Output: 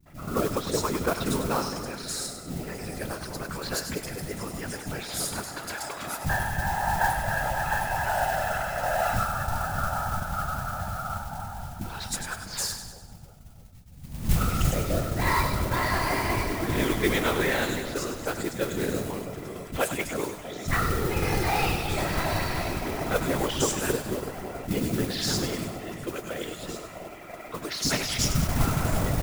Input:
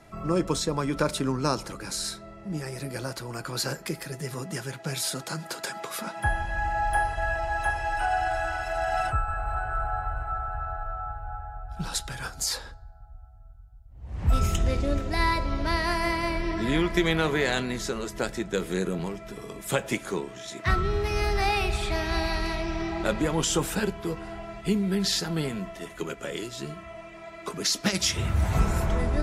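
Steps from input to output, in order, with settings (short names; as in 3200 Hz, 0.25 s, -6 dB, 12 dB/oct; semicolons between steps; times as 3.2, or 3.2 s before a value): three bands offset in time lows, mids, highs 60/170 ms, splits 230/4100 Hz; whisperiser; modulation noise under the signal 14 dB; split-band echo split 680 Hz, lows 0.327 s, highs 99 ms, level -9 dB; attack slew limiter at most 260 dB/s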